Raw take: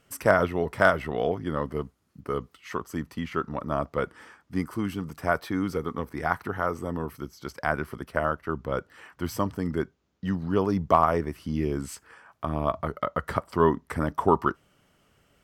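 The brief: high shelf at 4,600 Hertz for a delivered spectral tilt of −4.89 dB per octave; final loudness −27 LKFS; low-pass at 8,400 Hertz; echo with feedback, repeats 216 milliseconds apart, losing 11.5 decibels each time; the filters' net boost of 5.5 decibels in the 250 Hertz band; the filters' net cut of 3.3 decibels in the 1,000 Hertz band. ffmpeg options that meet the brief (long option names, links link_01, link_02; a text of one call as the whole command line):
ffmpeg -i in.wav -af "lowpass=8400,equalizer=frequency=250:width_type=o:gain=7.5,equalizer=frequency=1000:width_type=o:gain=-4.5,highshelf=frequency=4600:gain=-5.5,aecho=1:1:216|432|648:0.266|0.0718|0.0194,volume=-0.5dB" out.wav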